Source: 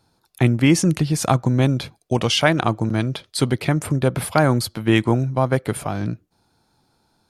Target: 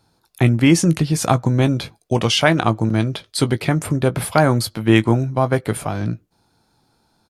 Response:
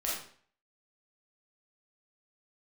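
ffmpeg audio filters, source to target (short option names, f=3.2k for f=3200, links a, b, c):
-filter_complex "[0:a]asplit=2[a][b];[b]adelay=18,volume=-12dB[c];[a][c]amix=inputs=2:normalize=0,volume=1.5dB"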